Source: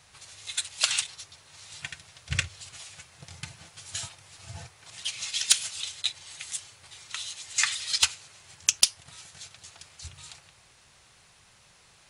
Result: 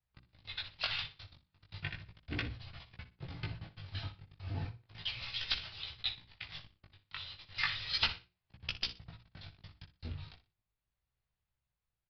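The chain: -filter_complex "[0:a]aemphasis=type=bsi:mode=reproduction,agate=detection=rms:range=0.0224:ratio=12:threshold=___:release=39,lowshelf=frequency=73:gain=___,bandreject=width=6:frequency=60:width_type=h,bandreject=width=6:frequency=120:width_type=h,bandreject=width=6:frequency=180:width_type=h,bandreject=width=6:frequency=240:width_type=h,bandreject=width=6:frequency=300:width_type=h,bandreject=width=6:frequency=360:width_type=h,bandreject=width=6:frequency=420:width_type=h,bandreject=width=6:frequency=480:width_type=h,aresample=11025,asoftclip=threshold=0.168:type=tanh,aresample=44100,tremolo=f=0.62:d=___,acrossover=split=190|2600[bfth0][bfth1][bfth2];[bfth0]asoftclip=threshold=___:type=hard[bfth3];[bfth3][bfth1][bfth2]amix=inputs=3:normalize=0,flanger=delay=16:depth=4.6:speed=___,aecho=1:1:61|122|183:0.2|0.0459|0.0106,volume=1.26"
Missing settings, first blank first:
0.00447, 6.5, 0.34, 0.0141, 0.35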